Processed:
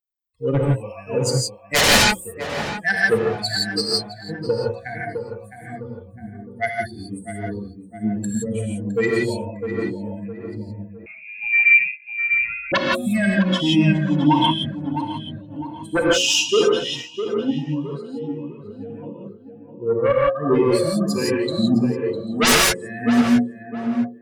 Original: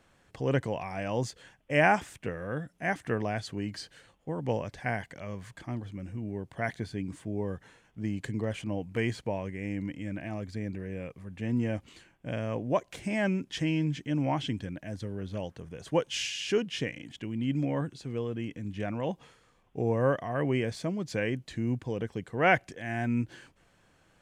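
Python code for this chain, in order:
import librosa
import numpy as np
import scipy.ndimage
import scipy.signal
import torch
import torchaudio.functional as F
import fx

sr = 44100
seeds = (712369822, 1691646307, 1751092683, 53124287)

y = fx.bin_expand(x, sr, power=3.0)
y = scipy.signal.sosfilt(scipy.signal.butter(2, 210.0, 'highpass', fs=sr, output='sos'), y)
y = fx.hum_notches(y, sr, base_hz=60, count=9)
y = fx.rider(y, sr, range_db=5, speed_s=0.5)
y = fx.fold_sine(y, sr, drive_db=18, ceiling_db=-10.0)
y = fx.echo_tape(y, sr, ms=659, feedback_pct=46, wet_db=-5.0, lp_hz=1200.0, drive_db=9.0, wow_cents=28)
y = fx.rev_gated(y, sr, seeds[0], gate_ms=190, shape='rising', drr_db=-3.5)
y = fx.freq_invert(y, sr, carrier_hz=2600, at=(11.06, 12.72))
y = fx.am_noise(y, sr, seeds[1], hz=5.7, depth_pct=65)
y = F.gain(torch.from_numpy(y), -1.0).numpy()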